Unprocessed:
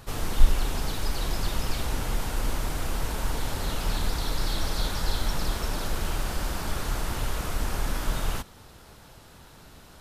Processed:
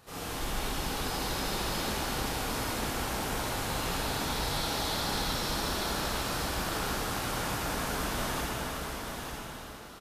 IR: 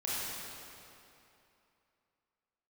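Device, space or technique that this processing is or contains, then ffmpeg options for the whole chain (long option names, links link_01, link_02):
cave: -filter_complex "[0:a]highpass=frequency=170:poles=1,aecho=1:1:363:0.398[link_01];[1:a]atrim=start_sample=2205[link_02];[link_01][link_02]afir=irnorm=-1:irlink=0,aecho=1:1:891:0.531,volume=-5.5dB"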